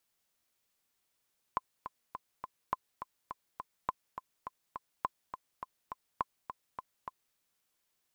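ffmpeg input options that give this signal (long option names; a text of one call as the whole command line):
ffmpeg -f lavfi -i "aevalsrc='pow(10,(-17-9.5*gte(mod(t,4*60/207),60/207))/20)*sin(2*PI*1030*mod(t,60/207))*exp(-6.91*mod(t,60/207)/0.03)':duration=5.79:sample_rate=44100" out.wav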